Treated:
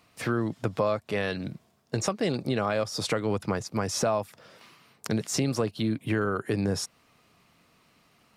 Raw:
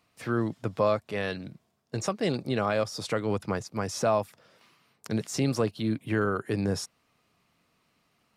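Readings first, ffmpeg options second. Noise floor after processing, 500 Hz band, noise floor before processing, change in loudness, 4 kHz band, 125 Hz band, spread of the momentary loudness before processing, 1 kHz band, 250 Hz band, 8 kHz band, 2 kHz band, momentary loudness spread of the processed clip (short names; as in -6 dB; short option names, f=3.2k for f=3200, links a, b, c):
-65 dBFS, 0.0 dB, -72 dBFS, +0.5 dB, +3.0 dB, +1.0 dB, 7 LU, -0.5 dB, +1.0 dB, +4.5 dB, +1.0 dB, 7 LU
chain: -af "acompressor=threshold=-34dB:ratio=2.5,volume=7.5dB"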